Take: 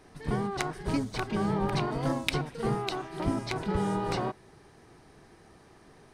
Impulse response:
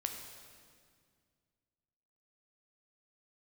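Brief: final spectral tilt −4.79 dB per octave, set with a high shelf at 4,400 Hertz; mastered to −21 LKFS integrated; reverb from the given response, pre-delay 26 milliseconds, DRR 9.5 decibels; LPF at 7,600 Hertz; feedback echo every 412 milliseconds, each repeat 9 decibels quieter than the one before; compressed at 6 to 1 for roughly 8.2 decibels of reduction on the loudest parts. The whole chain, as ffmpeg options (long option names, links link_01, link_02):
-filter_complex "[0:a]lowpass=7600,highshelf=frequency=4400:gain=3.5,acompressor=threshold=-33dB:ratio=6,aecho=1:1:412|824|1236|1648:0.355|0.124|0.0435|0.0152,asplit=2[link_01][link_02];[1:a]atrim=start_sample=2205,adelay=26[link_03];[link_02][link_03]afir=irnorm=-1:irlink=0,volume=-10dB[link_04];[link_01][link_04]amix=inputs=2:normalize=0,volume=15.5dB"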